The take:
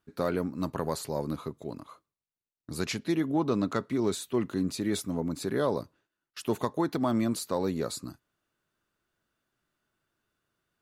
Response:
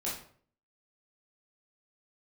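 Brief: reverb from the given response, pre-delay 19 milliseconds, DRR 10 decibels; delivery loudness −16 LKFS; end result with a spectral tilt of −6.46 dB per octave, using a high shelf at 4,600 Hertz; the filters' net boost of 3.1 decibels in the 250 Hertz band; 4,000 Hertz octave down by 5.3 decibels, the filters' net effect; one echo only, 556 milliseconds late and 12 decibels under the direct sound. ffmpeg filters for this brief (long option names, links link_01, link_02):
-filter_complex "[0:a]equalizer=frequency=250:width_type=o:gain=4,equalizer=frequency=4000:width_type=o:gain=-4.5,highshelf=frequency=4600:gain=-3.5,aecho=1:1:556:0.251,asplit=2[link_01][link_02];[1:a]atrim=start_sample=2205,adelay=19[link_03];[link_02][link_03]afir=irnorm=-1:irlink=0,volume=-13.5dB[link_04];[link_01][link_04]amix=inputs=2:normalize=0,volume=12dB"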